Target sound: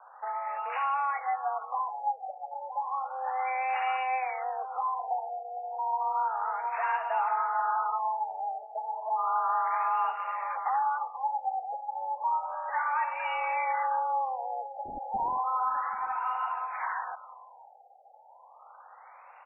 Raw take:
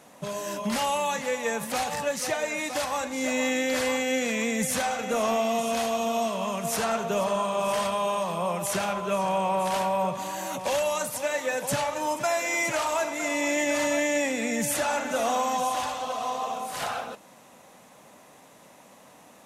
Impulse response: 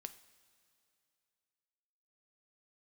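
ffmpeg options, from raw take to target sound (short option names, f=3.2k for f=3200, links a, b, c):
-filter_complex "[0:a]highpass=f=390:t=q:w=0.5412,highpass=f=390:t=q:w=1.307,lowpass=f=3.5k:t=q:w=0.5176,lowpass=f=3.5k:t=q:w=0.7071,lowpass=f=3.5k:t=q:w=1.932,afreqshift=210,asplit=2[a][b];[b]acompressor=threshold=-37dB:ratio=6,volume=-0.5dB[c];[a][c]amix=inputs=2:normalize=0,afreqshift=48,asplit=3[d][e][f];[d]afade=t=out:st=14.84:d=0.02[g];[e]aeval=exprs='0.0944*(abs(mod(val(0)/0.0944+3,4)-2)-1)':c=same,afade=t=in:st=14.84:d=0.02,afade=t=out:st=15.37:d=0.02[h];[f]afade=t=in:st=15.37:d=0.02[i];[g][h][i]amix=inputs=3:normalize=0,highshelf=f=2.2k:g=-10,aecho=1:1:786:0.126,afftfilt=real='re*lt(b*sr/1024,830*pow(2900/830,0.5+0.5*sin(2*PI*0.32*pts/sr)))':imag='im*lt(b*sr/1024,830*pow(2900/830,0.5+0.5*sin(2*PI*0.32*pts/sr)))':win_size=1024:overlap=0.75,volume=-1.5dB"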